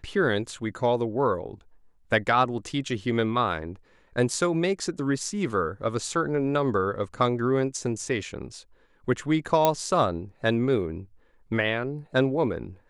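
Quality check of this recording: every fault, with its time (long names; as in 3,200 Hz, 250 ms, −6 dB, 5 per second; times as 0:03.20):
0:09.65: click −6 dBFS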